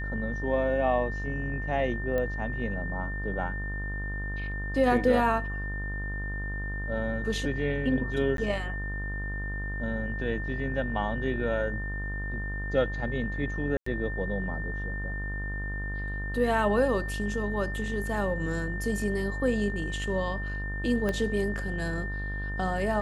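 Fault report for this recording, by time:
buzz 50 Hz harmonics 36 -34 dBFS
whine 1.8 kHz -36 dBFS
2.18 s: pop -19 dBFS
8.37–8.38 s: dropout 12 ms
13.77–13.86 s: dropout 94 ms
21.09 s: pop -17 dBFS

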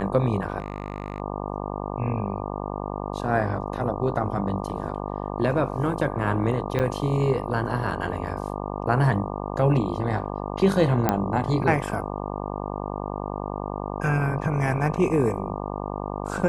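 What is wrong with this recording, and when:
buzz 50 Hz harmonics 24 -31 dBFS
0.58–1.20 s: clipped -23 dBFS
6.79–6.80 s: dropout 8.5 ms
11.09 s: pop -7 dBFS

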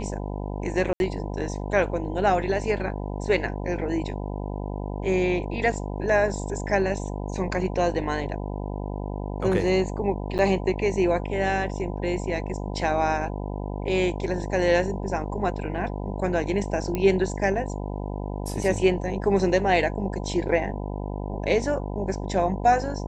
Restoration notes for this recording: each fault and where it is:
buzz 50 Hz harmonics 20 -31 dBFS
0.93–1.00 s: dropout 71 ms
10.38–10.39 s: dropout 8.8 ms
16.95 s: pop -13 dBFS

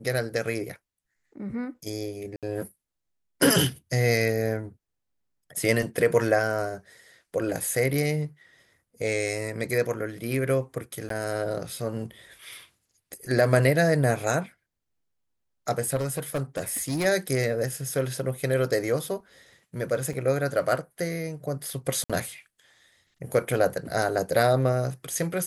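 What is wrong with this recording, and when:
2.36–2.43 s: dropout 67 ms
11.09–11.10 s: dropout 13 ms
15.95–17.06 s: clipped -23.5 dBFS
20.13 s: dropout 4.7 ms
22.04–22.10 s: dropout 56 ms

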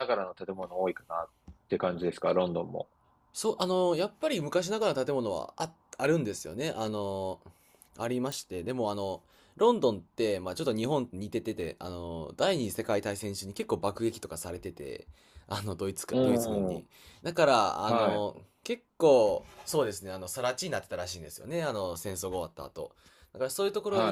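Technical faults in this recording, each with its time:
8.32 s: pop

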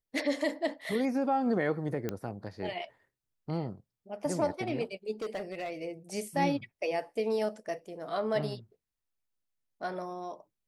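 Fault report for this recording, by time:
2.09 s: pop -19 dBFS
5.21–5.71 s: clipped -31.5 dBFS

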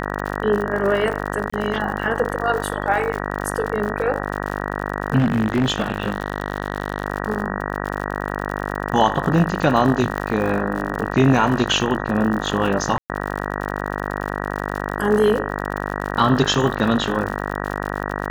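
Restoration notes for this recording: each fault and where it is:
buzz 50 Hz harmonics 38 -26 dBFS
crackle 69 per s -26 dBFS
1.50–1.52 s: dropout 25 ms
5.18–7.06 s: clipped -13 dBFS
10.18 s: pop -11 dBFS
12.98–13.10 s: dropout 118 ms

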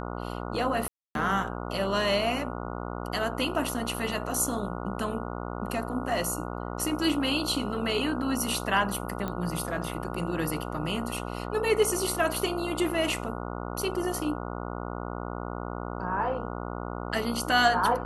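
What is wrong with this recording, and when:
buzz 60 Hz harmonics 24 -35 dBFS
0.88–1.15 s: dropout 272 ms
9.28 s: pop -19 dBFS

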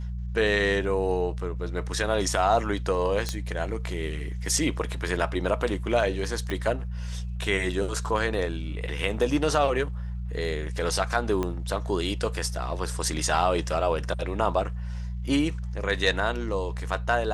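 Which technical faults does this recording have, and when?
hum 60 Hz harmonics 3 -32 dBFS
3.29 s: pop -14 dBFS
6.50 s: pop -17 dBFS
11.43 s: pop -15 dBFS

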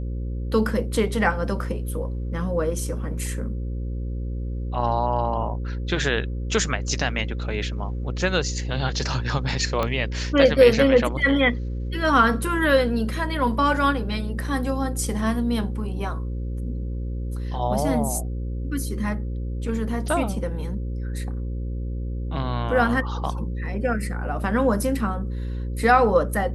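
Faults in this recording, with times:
buzz 60 Hz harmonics 9 -28 dBFS
9.83 s: pop -11 dBFS

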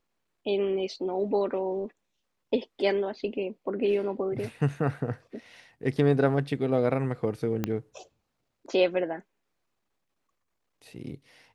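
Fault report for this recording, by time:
7.64 s: pop -14 dBFS

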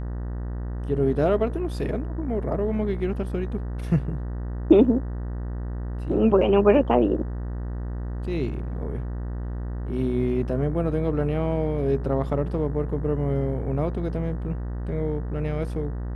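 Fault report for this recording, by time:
buzz 60 Hz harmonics 32 -30 dBFS

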